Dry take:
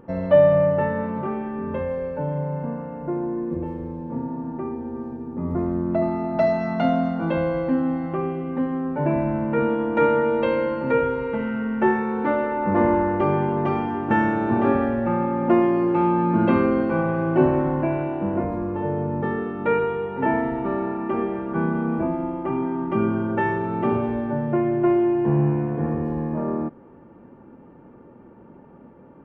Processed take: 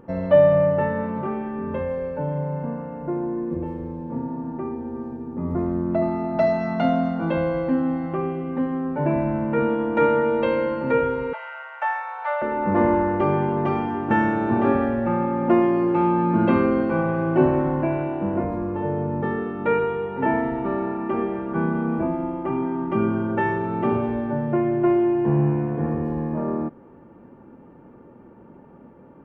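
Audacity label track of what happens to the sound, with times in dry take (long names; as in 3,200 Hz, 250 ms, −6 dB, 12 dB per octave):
11.330000	12.420000	Butterworth high-pass 590 Hz 72 dB per octave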